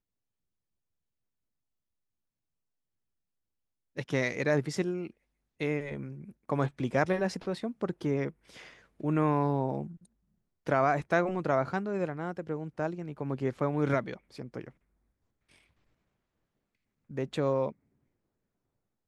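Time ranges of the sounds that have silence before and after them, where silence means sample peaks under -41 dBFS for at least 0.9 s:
3.97–14.69
17.11–17.72

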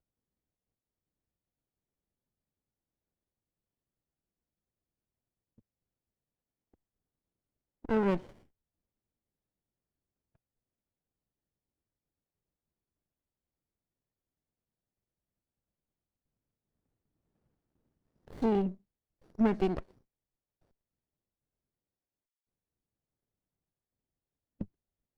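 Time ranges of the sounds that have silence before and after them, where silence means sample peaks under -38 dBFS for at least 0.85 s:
7.85–8.19
18.38–19.8

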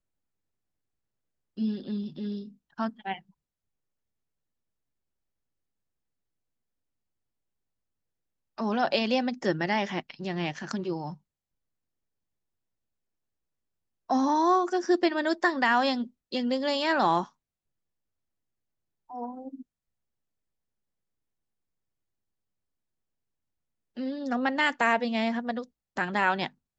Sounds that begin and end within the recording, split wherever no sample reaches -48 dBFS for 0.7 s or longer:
1.57–3.2
8.58–11.16
14.1–17.28
19.1–19.62

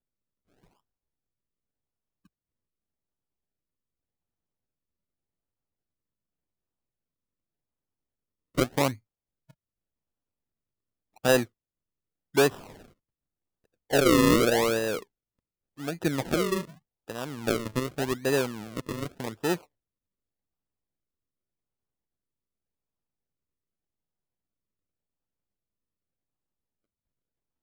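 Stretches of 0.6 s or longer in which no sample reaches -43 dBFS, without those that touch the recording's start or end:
8.95–11.24
11.45–12.35
12.82–13.9
15.03–15.78

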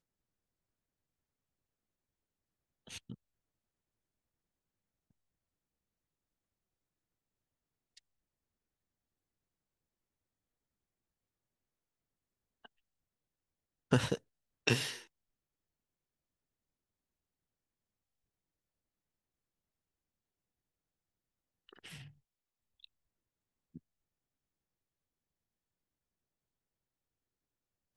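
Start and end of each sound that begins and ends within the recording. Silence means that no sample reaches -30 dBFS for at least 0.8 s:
13.92–14.89

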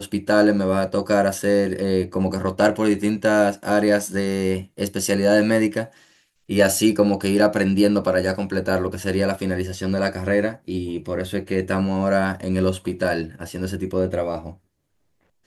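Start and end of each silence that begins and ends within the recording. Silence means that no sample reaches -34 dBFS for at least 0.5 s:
5.86–6.5

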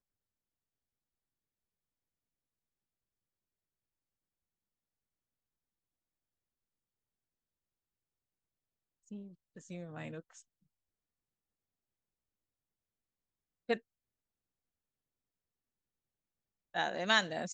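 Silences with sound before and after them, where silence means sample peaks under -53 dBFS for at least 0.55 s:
10.41–13.69
13.79–16.74

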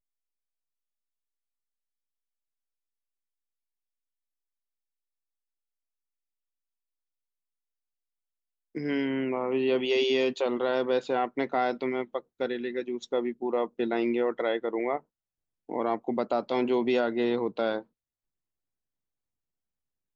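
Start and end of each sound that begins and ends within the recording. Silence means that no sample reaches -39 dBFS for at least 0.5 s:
8.75–14.99
15.69–17.81

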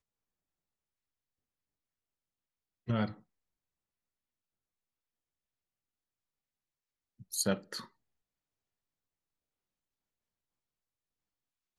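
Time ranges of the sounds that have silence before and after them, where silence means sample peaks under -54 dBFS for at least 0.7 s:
2.87–3.2
7.2–7.88

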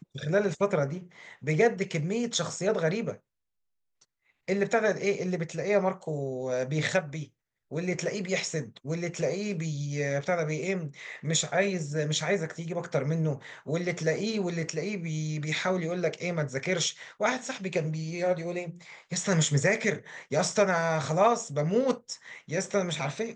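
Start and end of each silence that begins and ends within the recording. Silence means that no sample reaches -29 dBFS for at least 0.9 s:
3.11–4.48

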